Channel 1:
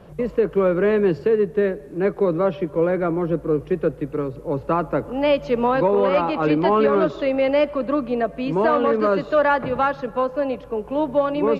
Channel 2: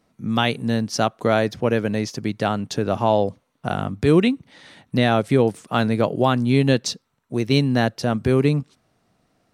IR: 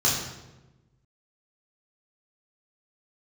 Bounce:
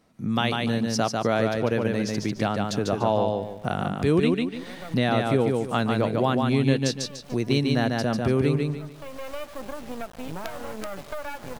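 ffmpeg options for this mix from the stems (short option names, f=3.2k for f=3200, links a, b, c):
-filter_complex "[0:a]aecho=1:1:1.3:0.59,acompressor=threshold=-26dB:ratio=6,acrusher=bits=4:dc=4:mix=0:aa=0.000001,adelay=1800,volume=-1dB[a];[1:a]volume=1.5dB,asplit=3[b][c][d];[c]volume=-4dB[e];[d]apad=whole_len=590738[f];[a][f]sidechaincompress=threshold=-30dB:ratio=6:attack=6.7:release=597[g];[e]aecho=0:1:146|292|438|584:1|0.25|0.0625|0.0156[h];[g][b][h]amix=inputs=3:normalize=0,acompressor=threshold=-30dB:ratio=1.5"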